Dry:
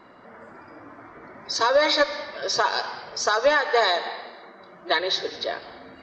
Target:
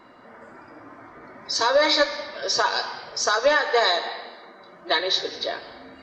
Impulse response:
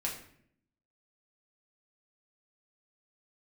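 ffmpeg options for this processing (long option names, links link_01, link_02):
-filter_complex "[0:a]asplit=2[link_01][link_02];[link_02]highshelf=frequency=3300:gain=11.5[link_03];[1:a]atrim=start_sample=2205,asetrate=70560,aresample=44100[link_04];[link_03][link_04]afir=irnorm=-1:irlink=0,volume=-5dB[link_05];[link_01][link_05]amix=inputs=2:normalize=0,volume=-3dB"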